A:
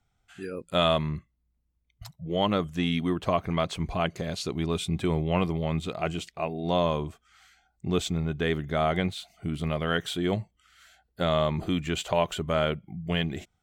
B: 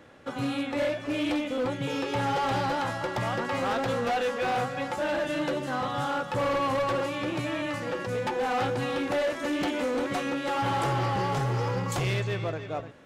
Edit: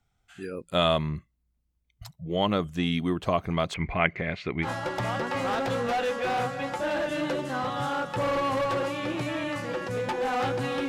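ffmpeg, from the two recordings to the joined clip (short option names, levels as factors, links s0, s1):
-filter_complex "[0:a]asettb=1/sr,asplit=3[s0][s1][s2];[s0]atrim=end=3.744[s3];[s1]atrim=start=3.74:end=4.69,asetpts=PTS-STARTPTS,afade=t=in:d=0.004:c=qsin,afade=t=out:st=0.946:d=0.004:c=qsin,lowpass=f=2100:t=q:w=6.2[s4];[s2]atrim=start=4.686[s5];[s3][s4]acrossfade=d=0.004:c1=hsin:c2=qsin[s6];[s6][s5]acrossfade=d=0.004:c1=qsin:c2=hsin,apad=whole_dur=10.88,atrim=end=10.88,atrim=end=4.69,asetpts=PTS-STARTPTS[s7];[1:a]atrim=start=2.79:end=9.06,asetpts=PTS-STARTPTS[s8];[s7][s8]acrossfade=d=0.08:c1=tri:c2=tri"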